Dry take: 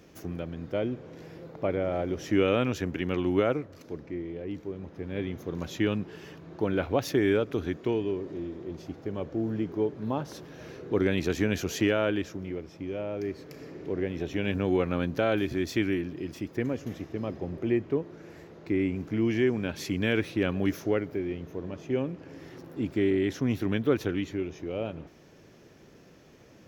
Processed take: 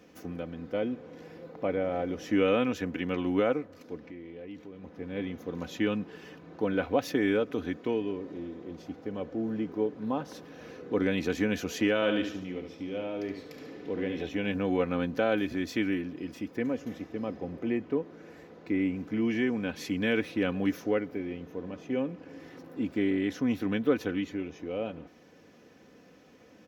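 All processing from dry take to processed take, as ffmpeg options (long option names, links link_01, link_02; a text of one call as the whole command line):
ffmpeg -i in.wav -filter_complex "[0:a]asettb=1/sr,asplit=3[link_01][link_02][link_03];[link_01]atrim=end=3.974[link_04];[link_02]atrim=start=3.97:end=4.84,asetpts=PTS-STARTPTS,afade=type=in:duration=0.004:curve=qsin,afade=type=out:start_time=0.866:duration=0.004:curve=qsin,equalizer=frequency=3000:width_type=o:width=1.5:gain=5,acompressor=threshold=-42dB:ratio=2:attack=3.2:release=140:knee=1:detection=peak[link_05];[link_03]atrim=start=4.836[link_06];[link_04][link_05]acrossfade=duration=0.004:curve1=hsin:curve2=qsin[link_07];[link_07][link_06]acrossfade=duration=0.004:curve1=qsin:curve2=hsin,asettb=1/sr,asplit=3[link_08][link_09][link_10];[link_08]atrim=end=11.954[link_11];[link_09]atrim=start=11.95:end=14.29,asetpts=PTS-STARTPTS,afade=type=in:duration=0.004:curve=qsin,afade=type=out:start_time=2.336:duration=0.004:curve=qsin,equalizer=frequency=3500:width=2:gain=7,aecho=1:1:71|142|213|284|355:0.447|0.188|0.0788|0.0331|0.0139,atrim=end_sample=103194[link_12];[link_10]atrim=start=14.286[link_13];[link_11][link_12]acrossfade=duration=0.004:curve1=hsin:curve2=qsin[link_14];[link_14][link_13]acrossfade=duration=0.004:curve1=qsin:curve2=hsin,highpass=79,bass=frequency=250:gain=-2,treble=frequency=4000:gain=-4,aecho=1:1:4:0.51,volume=-1.5dB" out.wav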